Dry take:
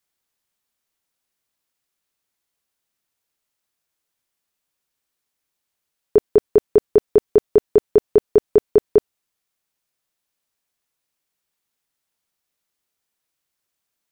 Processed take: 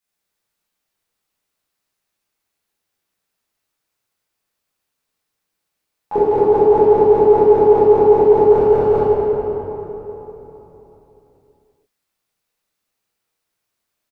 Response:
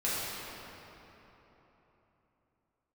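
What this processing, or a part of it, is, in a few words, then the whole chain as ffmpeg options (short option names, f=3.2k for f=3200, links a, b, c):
shimmer-style reverb: -filter_complex "[0:a]asplit=3[a][b][c];[a]afade=t=out:st=8.5:d=0.02[d];[b]aecho=1:1:1.4:0.68,afade=t=in:st=8.5:d=0.02,afade=t=out:st=8.97:d=0.02[e];[c]afade=t=in:st=8.97:d=0.02[f];[d][e][f]amix=inputs=3:normalize=0,asplit=2[g][h];[h]asetrate=88200,aresample=44100,atempo=0.5,volume=-8dB[i];[g][i]amix=inputs=2:normalize=0[j];[1:a]atrim=start_sample=2205[k];[j][k]afir=irnorm=-1:irlink=0,volume=-5dB"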